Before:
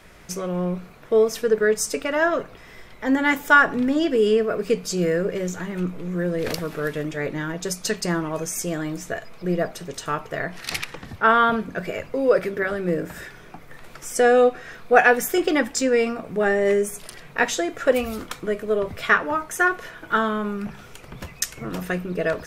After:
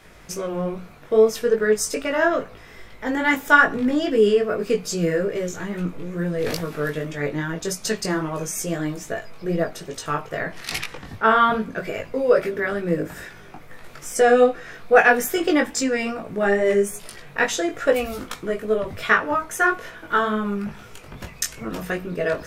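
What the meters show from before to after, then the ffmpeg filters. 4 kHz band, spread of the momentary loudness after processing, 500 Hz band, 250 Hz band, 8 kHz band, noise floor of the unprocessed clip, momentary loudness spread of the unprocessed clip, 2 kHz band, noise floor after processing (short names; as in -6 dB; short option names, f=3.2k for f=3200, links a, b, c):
+0.5 dB, 14 LU, +0.5 dB, 0.0 dB, +0.5 dB, -45 dBFS, 13 LU, +0.5 dB, -44 dBFS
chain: -af "flanger=delay=18:depth=2.7:speed=2.4,volume=3.5dB"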